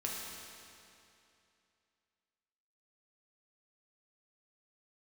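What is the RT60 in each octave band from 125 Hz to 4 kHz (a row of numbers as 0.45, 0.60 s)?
2.7, 2.7, 2.7, 2.7, 2.6, 2.5 s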